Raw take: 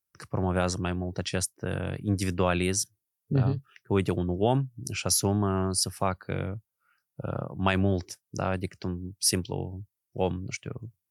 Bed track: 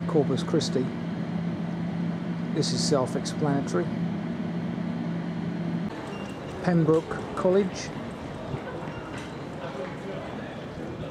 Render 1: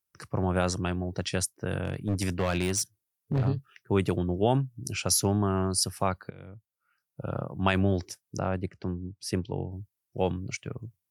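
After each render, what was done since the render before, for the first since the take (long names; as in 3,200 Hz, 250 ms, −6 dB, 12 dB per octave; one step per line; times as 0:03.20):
0:01.83–0:03.48: gain into a clipping stage and back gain 22 dB
0:06.30–0:07.38: fade in, from −21 dB
0:08.39–0:09.72: low-pass filter 1,400 Hz 6 dB per octave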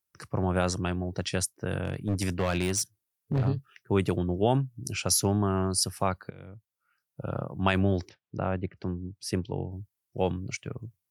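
0:08.09–0:08.77: Butterworth low-pass 3,700 Hz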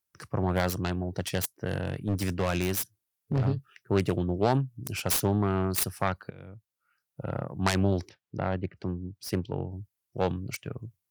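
phase distortion by the signal itself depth 0.28 ms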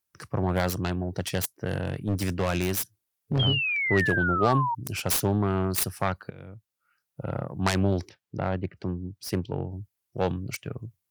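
in parallel at −11 dB: soft clipping −26.5 dBFS, distortion −9 dB
0:03.39–0:04.75: on the sum: sound drawn into the spectrogram fall 910–3,300 Hz −27 dBFS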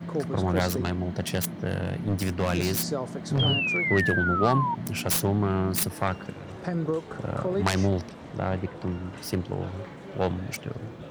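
mix in bed track −6.5 dB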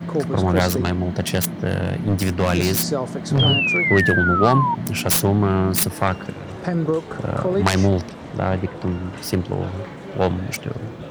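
level +7 dB
brickwall limiter −3 dBFS, peak gain reduction 1.5 dB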